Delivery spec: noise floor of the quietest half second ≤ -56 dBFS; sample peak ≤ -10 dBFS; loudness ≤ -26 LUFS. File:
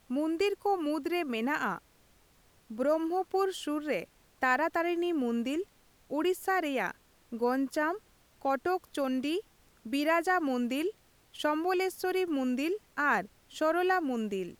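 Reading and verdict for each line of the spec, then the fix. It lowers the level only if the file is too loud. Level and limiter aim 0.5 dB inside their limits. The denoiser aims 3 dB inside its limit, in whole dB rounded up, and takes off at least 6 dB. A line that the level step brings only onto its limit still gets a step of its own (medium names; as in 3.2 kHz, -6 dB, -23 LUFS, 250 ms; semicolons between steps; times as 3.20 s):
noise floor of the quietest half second -64 dBFS: pass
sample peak -14.5 dBFS: pass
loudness -31.0 LUFS: pass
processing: none needed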